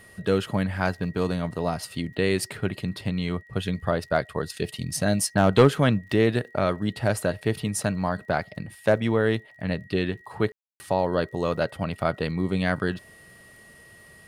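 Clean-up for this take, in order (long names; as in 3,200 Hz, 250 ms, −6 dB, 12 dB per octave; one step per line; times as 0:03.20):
clipped peaks rebuilt −8 dBFS
click removal
notch filter 1,900 Hz, Q 30
ambience match 0:10.52–0:10.80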